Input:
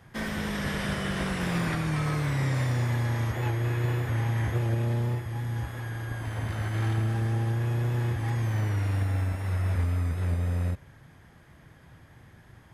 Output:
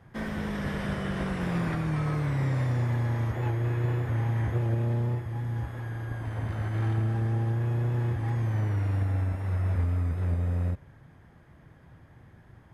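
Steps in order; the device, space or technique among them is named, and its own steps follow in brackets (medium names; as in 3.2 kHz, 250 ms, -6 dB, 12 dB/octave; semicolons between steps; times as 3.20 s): through cloth (treble shelf 2.2 kHz -11 dB)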